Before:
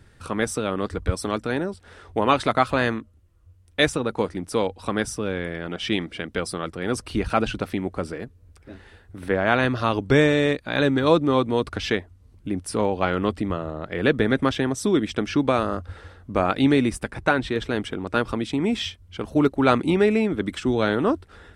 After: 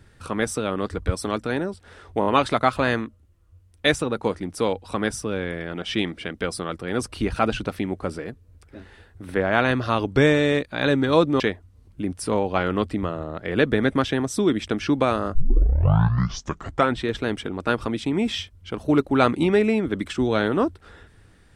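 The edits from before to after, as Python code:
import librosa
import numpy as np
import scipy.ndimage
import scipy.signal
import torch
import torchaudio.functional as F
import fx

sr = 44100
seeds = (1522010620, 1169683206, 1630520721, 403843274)

y = fx.edit(x, sr, fx.stutter(start_s=2.2, slice_s=0.02, count=4),
    fx.cut(start_s=11.34, length_s=0.53),
    fx.tape_start(start_s=15.82, length_s=1.64), tone=tone)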